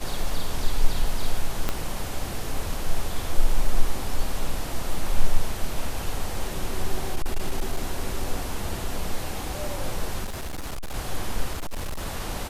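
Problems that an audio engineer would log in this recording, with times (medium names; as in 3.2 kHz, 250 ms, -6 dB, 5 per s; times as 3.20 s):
1.69 s: pop -9 dBFS
7.15–7.82 s: clipped -18 dBFS
10.24–10.95 s: clipped -28 dBFS
11.53–12.05 s: clipped -26 dBFS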